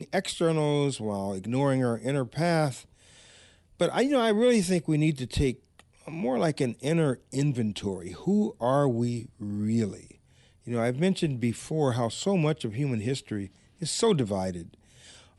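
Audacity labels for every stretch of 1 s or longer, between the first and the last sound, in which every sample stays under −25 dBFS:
2.690000	3.810000	silence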